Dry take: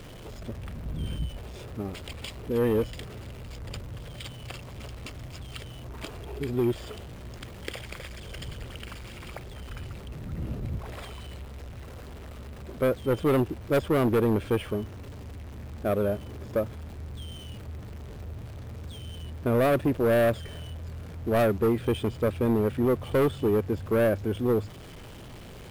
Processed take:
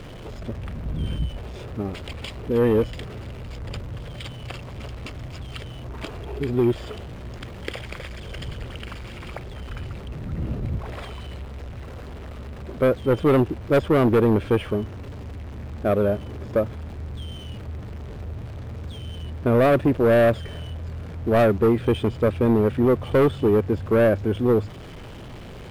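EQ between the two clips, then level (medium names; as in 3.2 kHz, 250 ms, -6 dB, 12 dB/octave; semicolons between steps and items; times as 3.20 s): treble shelf 6.3 kHz -11.5 dB; +5.5 dB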